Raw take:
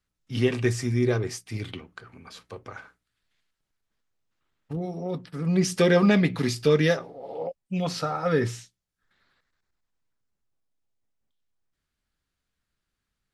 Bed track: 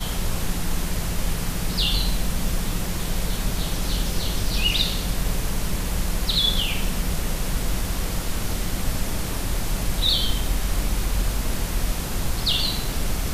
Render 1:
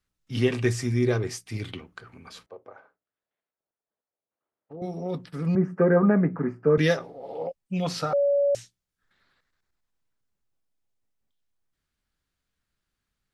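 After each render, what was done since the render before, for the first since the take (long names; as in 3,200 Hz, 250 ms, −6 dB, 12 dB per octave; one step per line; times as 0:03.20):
0:02.46–0:04.82: resonant band-pass 590 Hz, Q 1.7
0:05.55–0:06.78: elliptic band-pass filter 150–1,500 Hz
0:08.13–0:08.55: beep over 567 Hz −18.5 dBFS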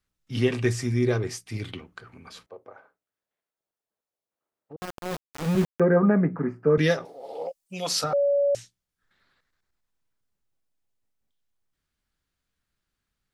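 0:04.76–0:05.80: centre clipping without the shift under −27 dBFS
0:07.05–0:08.04: bass and treble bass −14 dB, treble +13 dB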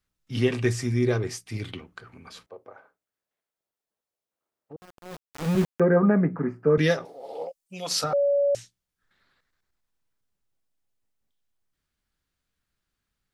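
0:04.82–0:05.45: fade in quadratic, from −15 dB
0:07.45–0:07.91: clip gain −3.5 dB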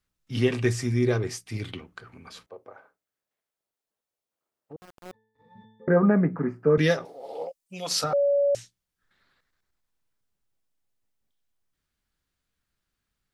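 0:05.11–0:05.88: resonances in every octave A, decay 0.79 s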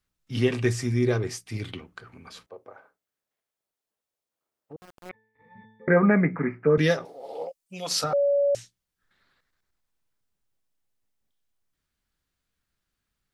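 0:05.09–0:06.67: low-pass with resonance 2,200 Hz, resonance Q 7.7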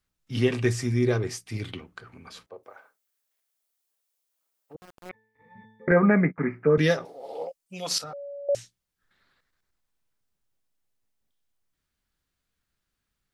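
0:02.63–0:04.75: spectral tilt +3 dB per octave
0:05.91–0:06.38: noise gate −30 dBFS, range −31 dB
0:07.98–0:08.49: output level in coarse steps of 19 dB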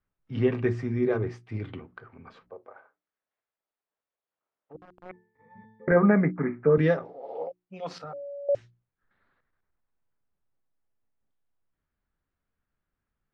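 low-pass filter 1,600 Hz 12 dB per octave
mains-hum notches 60/120/180/240/300/360 Hz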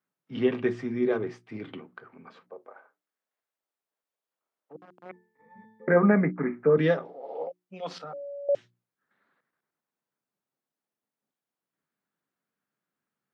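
high-pass filter 160 Hz 24 dB per octave
dynamic equaliser 3,300 Hz, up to +7 dB, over −59 dBFS, Q 3.5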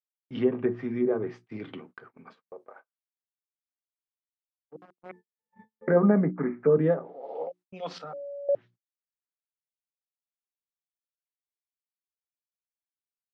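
noise gate −50 dBFS, range −39 dB
treble cut that deepens with the level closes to 1,000 Hz, closed at −22 dBFS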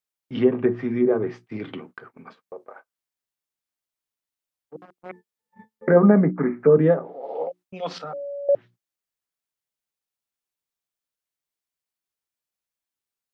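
level +6 dB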